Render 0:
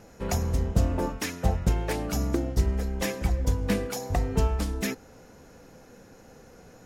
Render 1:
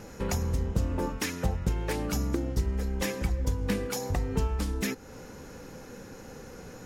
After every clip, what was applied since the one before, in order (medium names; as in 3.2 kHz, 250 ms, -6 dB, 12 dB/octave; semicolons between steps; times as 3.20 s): compression 2:1, threshold -39 dBFS, peak gain reduction 12.5 dB; peaking EQ 680 Hz -9.5 dB 0.2 oct; trim +6.5 dB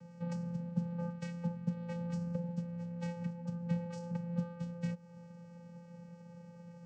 vocoder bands 8, square 172 Hz; trim -4.5 dB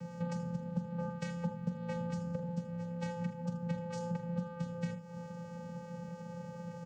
compression 2.5:1, threshold -46 dBFS, peak gain reduction 12.5 dB; on a send: early reflections 44 ms -11.5 dB, 79 ms -13.5 dB; on the sum: trim +10 dB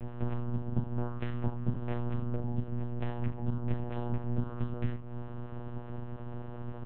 simulated room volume 220 m³, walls furnished, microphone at 1 m; monotone LPC vocoder at 8 kHz 120 Hz; trim +2 dB